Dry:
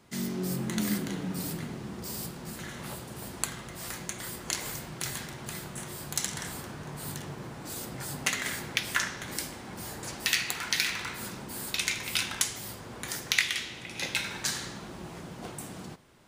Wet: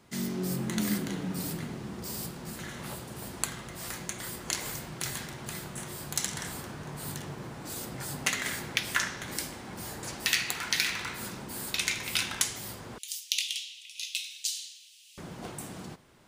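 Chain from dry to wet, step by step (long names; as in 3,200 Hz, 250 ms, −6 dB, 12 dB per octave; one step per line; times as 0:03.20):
0:12.98–0:15.18: elliptic high-pass filter 2,800 Hz, stop band 60 dB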